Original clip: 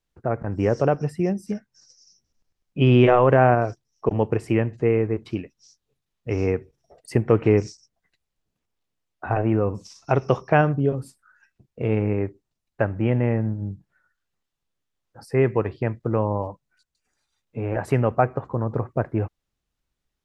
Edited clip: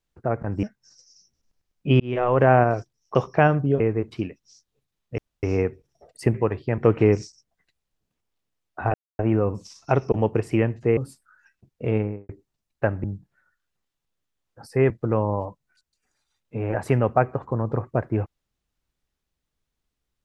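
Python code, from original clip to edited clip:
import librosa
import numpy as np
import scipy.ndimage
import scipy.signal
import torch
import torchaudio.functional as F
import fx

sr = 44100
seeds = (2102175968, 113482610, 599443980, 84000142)

y = fx.studio_fade_out(x, sr, start_s=11.87, length_s=0.39)
y = fx.edit(y, sr, fx.cut(start_s=0.63, length_s=0.91),
    fx.fade_in_span(start_s=2.91, length_s=0.48),
    fx.swap(start_s=4.06, length_s=0.88, other_s=10.29, other_length_s=0.65),
    fx.insert_room_tone(at_s=6.32, length_s=0.25),
    fx.insert_silence(at_s=9.39, length_s=0.25),
    fx.cut(start_s=13.01, length_s=0.61),
    fx.move(start_s=15.48, length_s=0.44, to_s=7.23), tone=tone)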